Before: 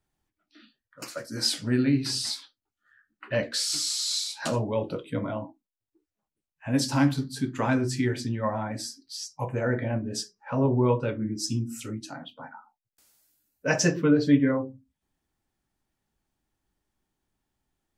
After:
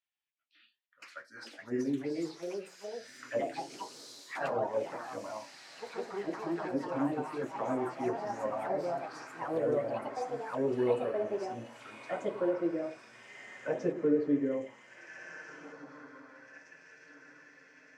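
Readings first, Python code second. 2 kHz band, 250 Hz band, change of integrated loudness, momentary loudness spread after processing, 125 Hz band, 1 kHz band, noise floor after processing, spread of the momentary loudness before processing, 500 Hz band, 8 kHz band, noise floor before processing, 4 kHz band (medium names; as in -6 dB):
-8.5 dB, -8.5 dB, -8.0 dB, 19 LU, -18.0 dB, -2.0 dB, -66 dBFS, 14 LU, -2.0 dB, under -20 dB, under -85 dBFS, -20.5 dB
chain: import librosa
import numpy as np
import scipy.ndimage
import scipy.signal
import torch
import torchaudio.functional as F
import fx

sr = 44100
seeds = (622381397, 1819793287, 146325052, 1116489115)

y = fx.echo_diffused(x, sr, ms=1645, feedback_pct=53, wet_db=-10.0)
y = fx.auto_wah(y, sr, base_hz=430.0, top_hz=2700.0, q=2.2, full_db=-21.5, direction='down')
y = fx.echo_pitch(y, sr, ms=606, semitones=3, count=3, db_per_echo=-3.0)
y = F.gain(torch.from_numpy(y), -2.5).numpy()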